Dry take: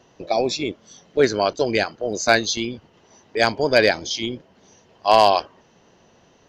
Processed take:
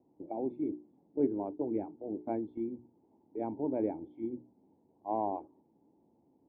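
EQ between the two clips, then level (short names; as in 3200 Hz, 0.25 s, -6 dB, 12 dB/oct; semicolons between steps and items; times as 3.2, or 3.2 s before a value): vocal tract filter u; HPF 52 Hz; notches 60/120/180/240/300/360/420 Hz; -2.0 dB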